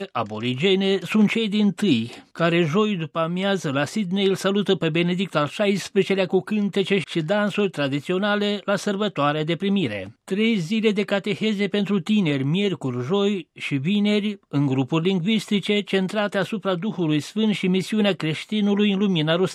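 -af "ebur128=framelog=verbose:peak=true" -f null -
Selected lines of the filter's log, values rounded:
Integrated loudness:
  I:         -22.2 LUFS
  Threshold: -32.2 LUFS
Loudness range:
  LRA:         1.3 LU
  Threshold: -42.4 LUFS
  LRA low:   -22.9 LUFS
  LRA high:  -21.5 LUFS
True peak:
  Peak:       -5.9 dBFS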